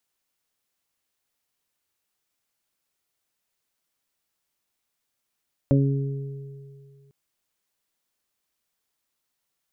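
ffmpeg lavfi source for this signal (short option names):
-f lavfi -i "aevalsrc='0.158*pow(10,-3*t/2.2)*sin(2*PI*138*t)+0.126*pow(10,-3*t/1.06)*sin(2*PI*276*t)+0.0447*pow(10,-3*t/2.46)*sin(2*PI*414*t)+0.0841*pow(10,-3*t/0.26)*sin(2*PI*552*t)':d=1.4:s=44100"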